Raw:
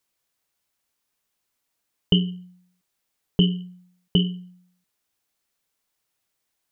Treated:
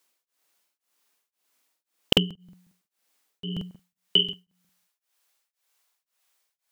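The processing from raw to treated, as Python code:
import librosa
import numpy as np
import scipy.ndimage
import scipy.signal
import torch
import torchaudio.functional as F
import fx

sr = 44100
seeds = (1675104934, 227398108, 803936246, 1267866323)

y = fx.highpass(x, sr, hz=fx.steps((0.0, 260.0), (3.71, 590.0)), slope=12)
y = fx.buffer_crackle(y, sr, first_s=0.64, period_s=0.18, block=2048, kind='repeat')
y = y * np.abs(np.cos(np.pi * 1.9 * np.arange(len(y)) / sr))
y = y * 10.0 ** (6.5 / 20.0)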